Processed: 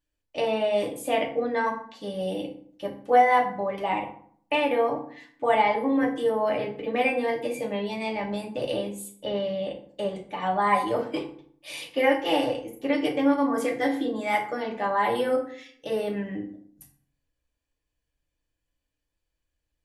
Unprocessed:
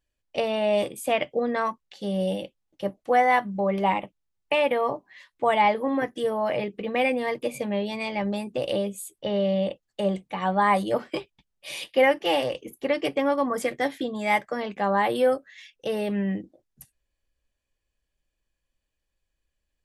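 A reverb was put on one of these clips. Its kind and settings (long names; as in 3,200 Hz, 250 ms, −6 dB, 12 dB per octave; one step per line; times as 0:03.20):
feedback delay network reverb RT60 0.57 s, low-frequency decay 1.3×, high-frequency decay 0.6×, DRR −1 dB
level −4.5 dB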